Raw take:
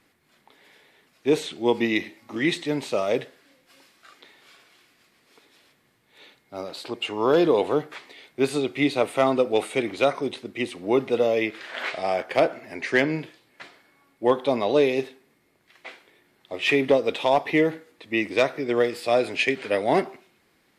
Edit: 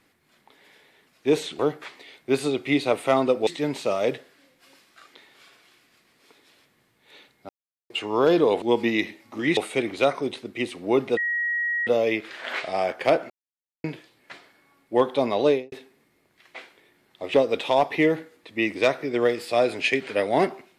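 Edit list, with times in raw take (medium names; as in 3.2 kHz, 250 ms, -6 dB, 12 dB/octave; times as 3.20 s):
1.59–2.54 s: swap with 7.69–9.57 s
6.56–6.97 s: mute
11.17 s: add tone 1.9 kHz -22.5 dBFS 0.70 s
12.60–13.14 s: mute
14.76–15.02 s: studio fade out
16.64–16.89 s: delete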